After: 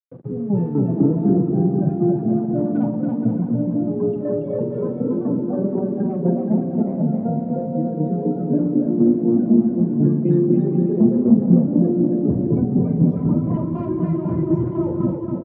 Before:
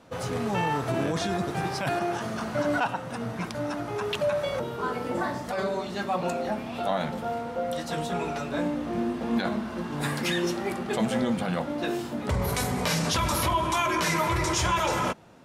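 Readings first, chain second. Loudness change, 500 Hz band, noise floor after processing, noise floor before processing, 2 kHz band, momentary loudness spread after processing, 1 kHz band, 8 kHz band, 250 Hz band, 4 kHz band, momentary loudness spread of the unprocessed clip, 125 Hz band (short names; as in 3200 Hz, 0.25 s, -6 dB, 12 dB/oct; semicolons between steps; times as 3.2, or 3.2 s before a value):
+8.5 dB, +6.0 dB, -27 dBFS, -36 dBFS, under -20 dB, 7 LU, -8.0 dB, under -40 dB, +14.0 dB, under -35 dB, 7 LU, +12.0 dB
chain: AGC gain up to 9 dB; loudest bins only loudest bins 16; wavefolder -14.5 dBFS; tremolo saw down 4 Hz, depth 75%; bit-crush 6-bit; Butterworth band-pass 220 Hz, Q 1; doubler 46 ms -11.5 dB; bouncing-ball echo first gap 0.28 s, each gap 0.7×, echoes 5; gain +8.5 dB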